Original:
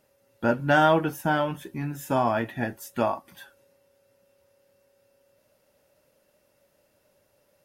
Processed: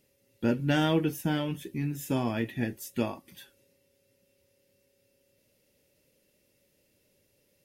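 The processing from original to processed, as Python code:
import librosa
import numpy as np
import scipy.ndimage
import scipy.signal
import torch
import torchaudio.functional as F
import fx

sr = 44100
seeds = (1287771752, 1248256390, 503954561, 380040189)

y = fx.band_shelf(x, sr, hz=970.0, db=-12.5, octaves=1.7)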